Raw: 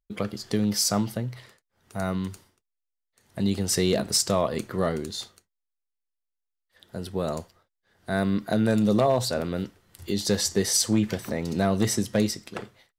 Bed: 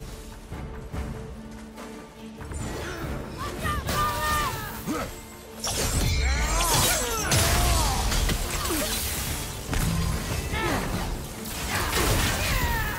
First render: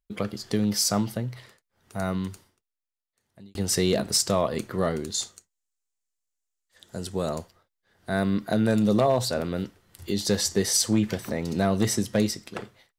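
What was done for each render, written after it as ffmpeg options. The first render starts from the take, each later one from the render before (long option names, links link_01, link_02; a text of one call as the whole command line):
ffmpeg -i in.wav -filter_complex "[0:a]asettb=1/sr,asplit=3[link_01][link_02][link_03];[link_01]atrim=end=5.144[link_04];[link_02]atrim=start=5.14:end=7.28,asetpts=PTS-STARTPTS,afade=type=in:duration=0.004:curve=qsin,afade=type=out:start_time=2.136:duration=0.004:curve=qsin,equalizer=frequency=7200:width_type=o:width=0.73:gain=13.5[link_05];[link_03]atrim=start=7.276[link_06];[link_04][link_05]acrossfade=duration=0.004:curve1=hsin:curve2=qsin[link_07];[link_07][link_06]acrossfade=duration=0.004:curve1=qsin:curve2=hsin,asplit=2[link_08][link_09];[link_08]atrim=end=3.55,asetpts=PTS-STARTPTS,afade=type=out:start_time=2.21:duration=1.34[link_10];[link_09]atrim=start=3.55,asetpts=PTS-STARTPTS,afade=type=in:duration=0.004:curve=hsin[link_11];[link_10][link_11]concat=n=2:v=0:a=1" out.wav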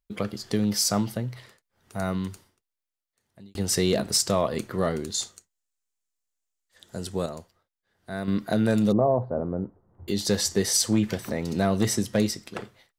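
ffmpeg -i in.wav -filter_complex "[0:a]asettb=1/sr,asplit=3[link_01][link_02][link_03];[link_01]atrim=end=8.924[link_04];[link_02]atrim=start=8.92:end=10.08,asetpts=PTS-STARTPTS,afade=type=in:duration=0.004:curve=qsin,afade=type=out:start_time=1.156:duration=0.004:curve=qsin,lowpass=frequency=1000:width=0.5412,lowpass=frequency=1000:width=1.3066[link_05];[link_03]atrim=start=10.076[link_06];[link_04][link_05]acrossfade=duration=0.004:curve1=hsin:curve2=qsin[link_07];[link_07][link_06]acrossfade=duration=0.004:curve1=qsin:curve2=hsin,asplit=3[link_08][link_09][link_10];[link_08]atrim=end=7.262[link_11];[link_09]atrim=start=7.258:end=8.282,asetpts=PTS-STARTPTS,volume=-7dB[link_12];[link_10]atrim=start=8.278[link_13];[link_11][link_12]acrossfade=duration=0.004:curve1=hsin:curve2=hsin[link_14];[link_14][link_13]acrossfade=duration=0.004:curve1=hsin:curve2=hsin" out.wav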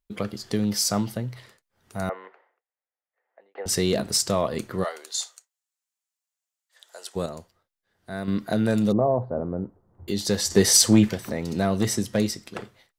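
ffmpeg -i in.wav -filter_complex "[0:a]asettb=1/sr,asplit=3[link_01][link_02][link_03];[link_01]atrim=end=2.094[link_04];[link_02]atrim=start=2.09:end=3.66,asetpts=PTS-STARTPTS,afade=type=in:duration=0.004:curve=qsin,afade=type=out:start_time=1.566:duration=0.004:curve=qsin,highpass=frequency=490:width=0.5412,highpass=frequency=490:width=1.3066,equalizer=frequency=500:width_type=q:width=4:gain=8,equalizer=frequency=760:width_type=q:width=4:gain=7,equalizer=frequency=1900:width_type=q:width=4:gain=6,lowpass=frequency=2100:width=0.5412,lowpass=frequency=2100:width=1.3066[link_05];[link_03]atrim=start=3.656[link_06];[link_04][link_05]acrossfade=duration=0.004:curve1=hsin:curve2=qsin[link_07];[link_07][link_06]acrossfade=duration=0.004:curve1=qsin:curve2=hsin,asplit=3[link_08][link_09][link_10];[link_08]afade=type=out:start_time=4.83:duration=0.02[link_11];[link_09]highpass=frequency=600:width=0.5412,highpass=frequency=600:width=1.3066,afade=type=in:start_time=4.83:duration=0.02,afade=type=out:start_time=7.15:duration=0.02[link_12];[link_10]afade=type=in:start_time=7.15:duration=0.02[link_13];[link_11][link_12][link_13]amix=inputs=3:normalize=0,asettb=1/sr,asplit=3[link_14][link_15][link_16];[link_14]atrim=end=10.504[link_17];[link_15]atrim=start=10.5:end=11.09,asetpts=PTS-STARTPTS,afade=type=in:duration=0.004:curve=qsin,afade=type=out:start_time=0.586:duration=0.004:curve=qsin,acontrast=71[link_18];[link_16]atrim=start=11.086[link_19];[link_17][link_18]acrossfade=duration=0.004:curve1=hsin:curve2=qsin[link_20];[link_20][link_19]acrossfade=duration=0.004:curve1=qsin:curve2=hsin" out.wav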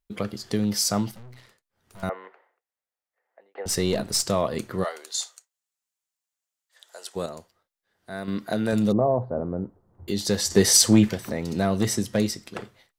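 ffmpeg -i in.wav -filter_complex "[0:a]asettb=1/sr,asplit=3[link_01][link_02][link_03];[link_01]atrim=end=1.114[link_04];[link_02]atrim=start=1.11:end=2.03,asetpts=PTS-STARTPTS,afade=type=in:duration=0.004:curve=qsin,afade=type=out:start_time=0.916:duration=0.004:curve=qsin,aeval=exprs='(tanh(158*val(0)+0.75)-tanh(0.75))/158':channel_layout=same[link_05];[link_03]atrim=start=2.026[link_06];[link_04][link_05]acrossfade=duration=0.004:curve1=hsin:curve2=qsin[link_07];[link_07][link_06]acrossfade=duration=0.004:curve1=qsin:curve2=hsin,asettb=1/sr,asplit=3[link_08][link_09][link_10];[link_08]atrim=end=3.684[link_11];[link_09]atrim=start=3.68:end=4.25,asetpts=PTS-STARTPTS,afade=type=in:duration=0.004:curve=qsin,afade=type=out:start_time=0.566:duration=0.004:curve=qsin,aeval=exprs='if(lt(val(0),0),0.708*val(0),val(0))':channel_layout=same[link_12];[link_10]atrim=start=4.246[link_13];[link_11][link_12]acrossfade=duration=0.004:curve1=hsin:curve2=qsin[link_14];[link_14][link_13]acrossfade=duration=0.004:curve1=qsin:curve2=hsin,asettb=1/sr,asplit=3[link_15][link_16][link_17];[link_15]atrim=end=7.134[link_18];[link_16]atrim=start=7.13:end=8.73,asetpts=PTS-STARTPTS,afade=type=in:duration=0.004:curve=qsin,afade=type=out:start_time=1.596:duration=0.004:curve=qsin,lowshelf=frequency=180:gain=-8[link_19];[link_17]atrim=start=8.726[link_20];[link_18][link_19]acrossfade=duration=0.004:curve1=hsin:curve2=qsin[link_21];[link_21][link_20]acrossfade=duration=0.004:curve1=qsin:curve2=hsin" out.wav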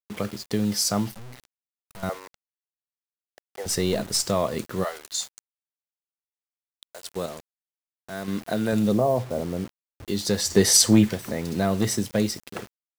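ffmpeg -i in.wav -af "acrusher=bits=6:mix=0:aa=0.000001" out.wav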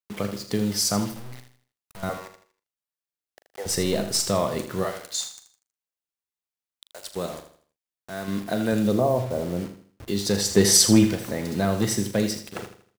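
ffmpeg -i in.wav -filter_complex "[0:a]asplit=2[link_01][link_02];[link_02]adelay=40,volume=-12dB[link_03];[link_01][link_03]amix=inputs=2:normalize=0,aecho=1:1:80|160|240|320:0.299|0.107|0.0387|0.0139" out.wav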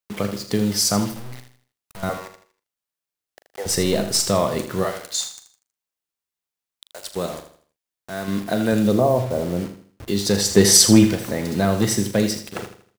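ffmpeg -i in.wav -af "volume=4dB" out.wav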